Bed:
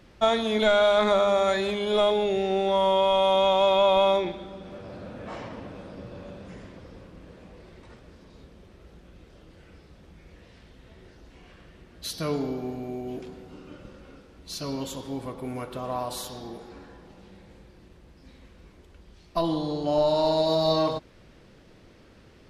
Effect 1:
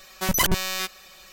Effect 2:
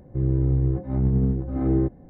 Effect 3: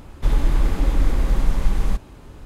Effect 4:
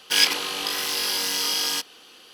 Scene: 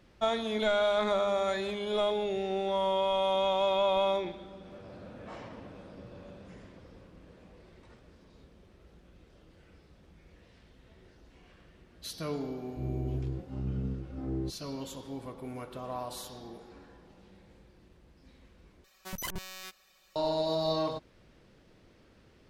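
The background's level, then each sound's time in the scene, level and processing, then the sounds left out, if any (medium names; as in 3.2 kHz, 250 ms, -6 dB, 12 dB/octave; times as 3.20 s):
bed -7 dB
12.62 s: add 2 -13 dB
18.84 s: replace with 1 -16.5 dB
not used: 3, 4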